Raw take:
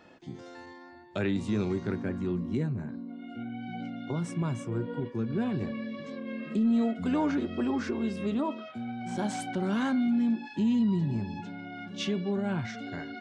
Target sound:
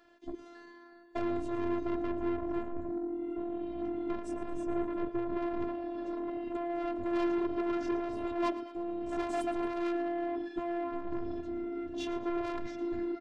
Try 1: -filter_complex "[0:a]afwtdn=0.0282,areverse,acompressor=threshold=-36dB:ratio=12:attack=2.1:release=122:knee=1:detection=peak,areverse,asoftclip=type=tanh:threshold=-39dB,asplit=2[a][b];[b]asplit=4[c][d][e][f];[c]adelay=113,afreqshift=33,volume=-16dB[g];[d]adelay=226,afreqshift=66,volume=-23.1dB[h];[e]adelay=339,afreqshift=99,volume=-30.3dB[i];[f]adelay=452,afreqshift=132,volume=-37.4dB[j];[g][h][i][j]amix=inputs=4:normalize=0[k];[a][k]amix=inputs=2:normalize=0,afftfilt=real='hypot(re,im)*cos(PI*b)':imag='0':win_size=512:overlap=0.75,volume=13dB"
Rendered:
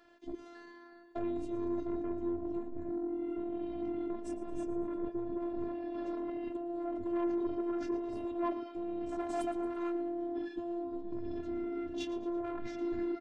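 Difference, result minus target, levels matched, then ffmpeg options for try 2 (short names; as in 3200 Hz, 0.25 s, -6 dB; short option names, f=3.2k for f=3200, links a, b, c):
compressor: peak gain reduction +9 dB
-filter_complex "[0:a]afwtdn=0.0282,areverse,acompressor=threshold=-26dB:ratio=12:attack=2.1:release=122:knee=1:detection=peak,areverse,asoftclip=type=tanh:threshold=-39dB,asplit=2[a][b];[b]asplit=4[c][d][e][f];[c]adelay=113,afreqshift=33,volume=-16dB[g];[d]adelay=226,afreqshift=66,volume=-23.1dB[h];[e]adelay=339,afreqshift=99,volume=-30.3dB[i];[f]adelay=452,afreqshift=132,volume=-37.4dB[j];[g][h][i][j]amix=inputs=4:normalize=0[k];[a][k]amix=inputs=2:normalize=0,afftfilt=real='hypot(re,im)*cos(PI*b)':imag='0':win_size=512:overlap=0.75,volume=13dB"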